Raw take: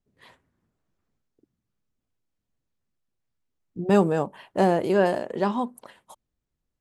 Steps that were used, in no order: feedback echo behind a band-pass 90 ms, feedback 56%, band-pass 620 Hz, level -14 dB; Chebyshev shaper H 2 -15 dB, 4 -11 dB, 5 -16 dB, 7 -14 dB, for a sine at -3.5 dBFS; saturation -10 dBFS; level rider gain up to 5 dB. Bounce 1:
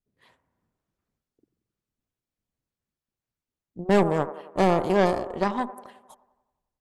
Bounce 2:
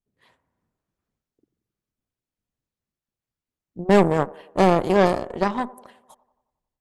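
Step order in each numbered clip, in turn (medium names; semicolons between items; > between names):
Chebyshev shaper > feedback echo behind a band-pass > level rider > saturation; feedback echo behind a band-pass > Chebyshev shaper > saturation > level rider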